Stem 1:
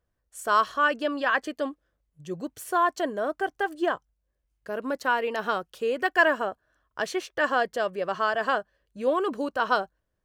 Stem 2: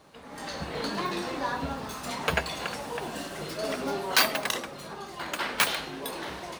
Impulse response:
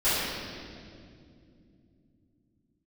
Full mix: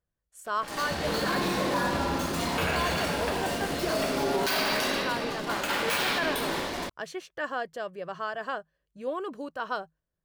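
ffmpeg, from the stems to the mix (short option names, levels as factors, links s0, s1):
-filter_complex "[0:a]equalizer=f=160:w=8:g=12.5,volume=0.398[s0];[1:a]acrusher=bits=5:mix=0:aa=0.5,adelay=300,volume=0.891,asplit=2[s1][s2];[s2]volume=0.251[s3];[2:a]atrim=start_sample=2205[s4];[s3][s4]afir=irnorm=-1:irlink=0[s5];[s0][s1][s5]amix=inputs=3:normalize=0,alimiter=limit=0.126:level=0:latency=1:release=16"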